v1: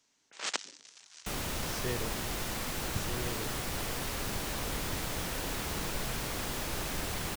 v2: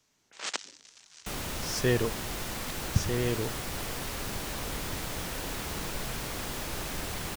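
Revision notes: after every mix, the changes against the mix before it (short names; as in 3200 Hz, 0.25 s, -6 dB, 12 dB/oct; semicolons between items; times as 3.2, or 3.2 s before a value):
speech +11.0 dB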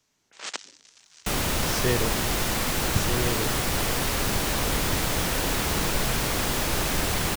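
second sound +10.0 dB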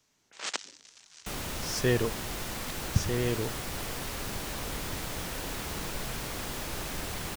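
second sound -10.5 dB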